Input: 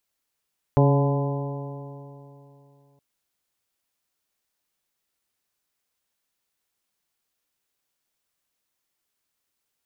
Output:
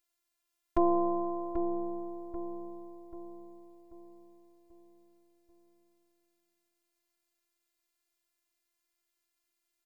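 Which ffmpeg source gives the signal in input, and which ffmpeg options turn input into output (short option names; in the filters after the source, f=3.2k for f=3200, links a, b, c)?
-f lavfi -i "aevalsrc='0.178*pow(10,-3*t/2.92)*sin(2*PI*139.12*t)+0.0794*pow(10,-3*t/2.92)*sin(2*PI*278.94*t)+0.0794*pow(10,-3*t/2.92)*sin(2*PI*420.18*t)+0.075*pow(10,-3*t/2.92)*sin(2*PI*563.51*t)+0.0376*pow(10,-3*t/2.92)*sin(2*PI*709.62*t)+0.0447*pow(10,-3*t/2.92)*sin(2*PI*859.14*t)+0.0335*pow(10,-3*t/2.92)*sin(2*PI*1012.71*t)':d=2.22:s=44100"
-filter_complex "[0:a]afftfilt=real='hypot(re,im)*cos(PI*b)':imag='0':win_size=512:overlap=0.75,asplit=2[a][b];[b]adelay=787,lowpass=f=1.5k:p=1,volume=-6.5dB,asplit=2[c][d];[d]adelay=787,lowpass=f=1.5k:p=1,volume=0.47,asplit=2[e][f];[f]adelay=787,lowpass=f=1.5k:p=1,volume=0.47,asplit=2[g][h];[h]adelay=787,lowpass=f=1.5k:p=1,volume=0.47,asplit=2[i][j];[j]adelay=787,lowpass=f=1.5k:p=1,volume=0.47,asplit=2[k][l];[l]adelay=787,lowpass=f=1.5k:p=1,volume=0.47[m];[c][e][g][i][k][m]amix=inputs=6:normalize=0[n];[a][n]amix=inputs=2:normalize=0"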